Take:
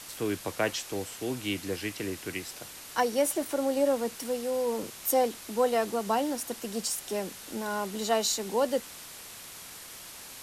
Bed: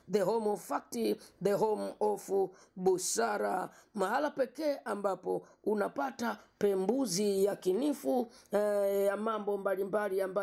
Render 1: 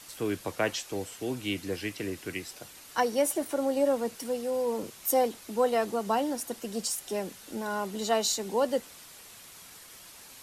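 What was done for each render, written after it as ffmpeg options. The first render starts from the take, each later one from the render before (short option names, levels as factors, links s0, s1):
-af "afftdn=nr=6:nf=-46"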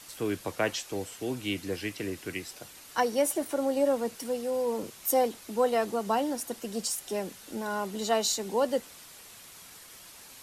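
-af anull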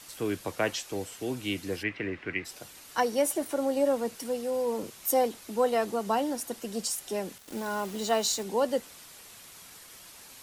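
-filter_complex "[0:a]asplit=3[s0][s1][s2];[s0]afade=t=out:st=1.82:d=0.02[s3];[s1]lowpass=f=2100:t=q:w=2.2,afade=t=in:st=1.82:d=0.02,afade=t=out:st=2.44:d=0.02[s4];[s2]afade=t=in:st=2.44:d=0.02[s5];[s3][s4][s5]amix=inputs=3:normalize=0,asettb=1/sr,asplit=3[s6][s7][s8];[s6]atrim=end=7.384[s9];[s7]atrim=start=7.38:end=8.43,asetpts=PTS-STARTPTS,afade=t=in:d=0.004:c=qsin,afade=t=out:st=1.046:d=0.004:c=qsin,acrusher=bits=6:mix=0:aa=0.5[s10];[s8]atrim=start=8.426[s11];[s9][s10]acrossfade=d=0.004:c1=hsin:c2=qsin[s12];[s12][s11]acrossfade=d=0.004:c1=qsin:c2=hsin"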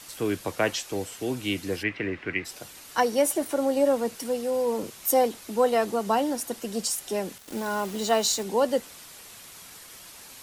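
-af "volume=1.5"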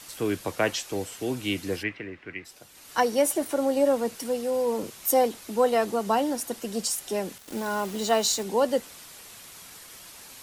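-filter_complex "[0:a]asplit=3[s0][s1][s2];[s0]atrim=end=2.05,asetpts=PTS-STARTPTS,afade=t=out:st=1.76:d=0.29:silence=0.375837[s3];[s1]atrim=start=2.05:end=2.68,asetpts=PTS-STARTPTS,volume=0.376[s4];[s2]atrim=start=2.68,asetpts=PTS-STARTPTS,afade=t=in:d=0.29:silence=0.375837[s5];[s3][s4][s5]concat=n=3:v=0:a=1"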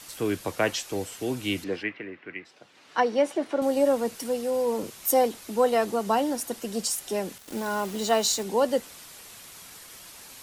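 -filter_complex "[0:a]asettb=1/sr,asplit=3[s0][s1][s2];[s0]atrim=end=1.644[s3];[s1]atrim=start=1.64:end=3.62,asetpts=PTS-STARTPTS,afade=t=in:d=0.004:c=qsin,afade=t=out:st=1.976:d=0.004:c=qsin,highpass=170,lowpass=3600[s4];[s2]atrim=start=3.616[s5];[s3][s4]acrossfade=d=0.004:c1=hsin:c2=qsin[s6];[s6][s5]acrossfade=d=0.004:c1=qsin:c2=hsin"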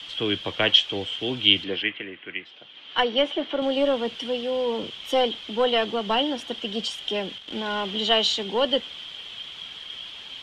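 -filter_complex "[0:a]lowpass=f=3200:t=q:w=15,acrossover=split=650|1100[s0][s1][s2];[s1]aeval=exprs='clip(val(0),-1,0.0178)':c=same[s3];[s0][s3][s2]amix=inputs=3:normalize=0"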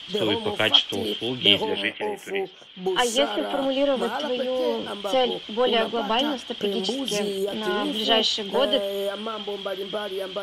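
-filter_complex "[1:a]volume=1.26[s0];[0:a][s0]amix=inputs=2:normalize=0"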